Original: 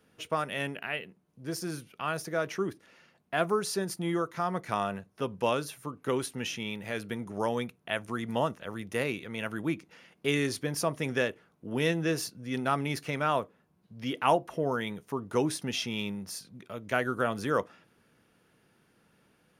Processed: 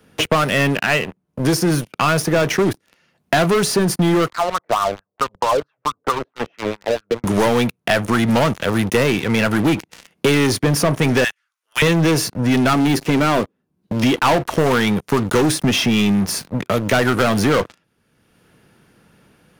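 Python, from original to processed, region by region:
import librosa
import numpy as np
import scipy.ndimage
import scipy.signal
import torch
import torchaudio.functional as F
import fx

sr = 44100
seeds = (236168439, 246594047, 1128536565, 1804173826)

y = fx.chain(x, sr, fx.lowpass(hz=2000.0, slope=12),
    fx.wah_lfo(hz=4.5, low_hz=480.0, high_hz=1400.0, q=4.1),
    fx.band_squash(depth_pct=40), at=(4.3, 7.24))
y = fx.chain(y, sr, fx.highpass(hz=1300.0, slope=24),
    fx.peak_eq(hz=6400.0, db=6.5, octaves=1.4), at=(11.24, 11.82))
y = fx.chain(y, sr, fx.peak_eq(hz=280.0, db=10.0, octaves=1.3),
    fx.comb_fb(f0_hz=390.0, decay_s=0.19, harmonics='all', damping=0.0, mix_pct=50), at=(12.73, 14.03))
y = fx.low_shelf(y, sr, hz=160.0, db=5.5)
y = fx.leveller(y, sr, passes=5)
y = fx.band_squash(y, sr, depth_pct=70)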